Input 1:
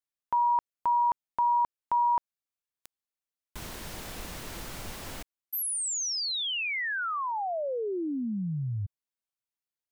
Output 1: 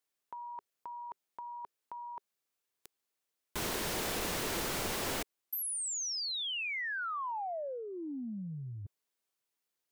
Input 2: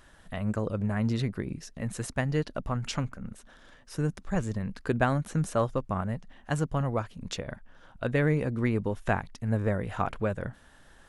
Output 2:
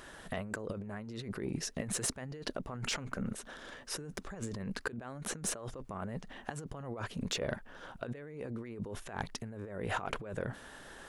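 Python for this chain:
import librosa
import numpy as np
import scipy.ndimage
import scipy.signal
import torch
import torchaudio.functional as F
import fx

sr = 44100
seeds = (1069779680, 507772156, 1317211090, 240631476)

y = fx.peak_eq(x, sr, hz=410.0, db=5.0, octaves=0.6)
y = fx.over_compress(y, sr, threshold_db=-37.0, ratio=-1.0)
y = fx.low_shelf(y, sr, hz=120.0, db=-11.0)
y = 10.0 ** (-22.5 / 20.0) * np.tanh(y / 10.0 ** (-22.5 / 20.0))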